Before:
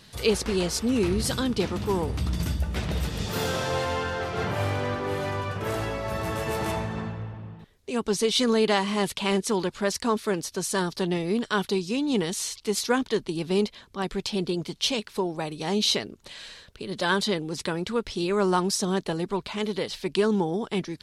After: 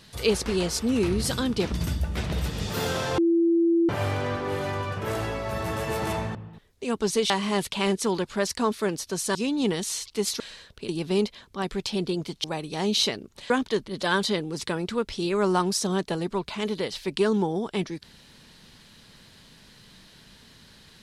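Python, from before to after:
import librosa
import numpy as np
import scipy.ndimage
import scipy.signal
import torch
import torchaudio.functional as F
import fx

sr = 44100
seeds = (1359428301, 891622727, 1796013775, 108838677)

y = fx.edit(x, sr, fx.cut(start_s=1.72, length_s=0.59),
    fx.bleep(start_s=3.77, length_s=0.71, hz=336.0, db=-17.5),
    fx.cut(start_s=6.94, length_s=0.47),
    fx.cut(start_s=8.36, length_s=0.39),
    fx.cut(start_s=10.8, length_s=1.05),
    fx.swap(start_s=12.9, length_s=0.38, other_s=16.38, other_length_s=0.48),
    fx.cut(start_s=14.84, length_s=0.48), tone=tone)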